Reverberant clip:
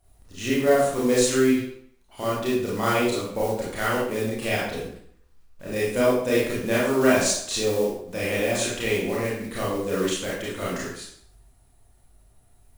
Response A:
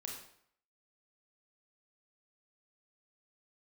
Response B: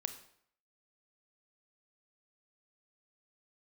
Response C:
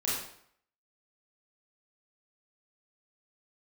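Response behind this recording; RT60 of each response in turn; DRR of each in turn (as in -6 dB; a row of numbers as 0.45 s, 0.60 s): C; 0.65 s, 0.65 s, 0.65 s; -1.0 dB, 8.5 dB, -7.5 dB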